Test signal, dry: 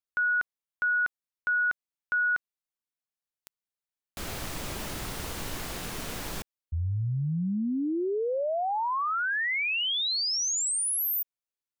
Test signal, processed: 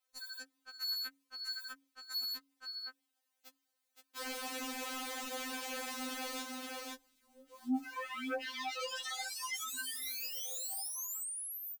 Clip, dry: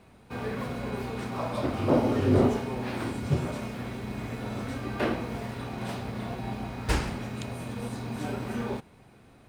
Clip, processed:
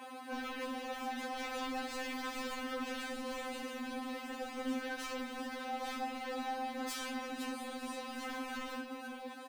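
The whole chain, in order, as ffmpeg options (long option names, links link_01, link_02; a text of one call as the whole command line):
ffmpeg -i in.wav -filter_complex "[0:a]bandreject=frequency=275:width_type=h:width=4,bandreject=frequency=550:width_type=h:width=4,flanger=delay=1.1:depth=6:regen=-29:speed=0.7:shape=triangular,acrossover=split=210|4100[link_01][link_02][link_03];[link_01]aderivative[link_04];[link_02]volume=32.5dB,asoftclip=hard,volume=-32.5dB[link_05];[link_04][link_05][link_03]amix=inputs=3:normalize=0,acrossover=split=7800[link_06][link_07];[link_07]acompressor=threshold=-47dB:ratio=4:attack=1:release=60[link_08];[link_06][link_08]amix=inputs=2:normalize=0,highpass=49,highshelf=frequency=2800:gain=-3,asplit=2[link_09][link_10];[link_10]aecho=0:1:520:0.282[link_11];[link_09][link_11]amix=inputs=2:normalize=0,acrusher=bits=8:mode=log:mix=0:aa=0.000001,aeval=exprs='0.0447*sin(PI/2*3.98*val(0)/0.0447)':channel_layout=same,acompressor=threshold=-39dB:ratio=12:attack=0.39:release=33:knee=6:detection=peak,afftfilt=real='re*3.46*eq(mod(b,12),0)':imag='im*3.46*eq(mod(b,12),0)':win_size=2048:overlap=0.75,volume=2.5dB" out.wav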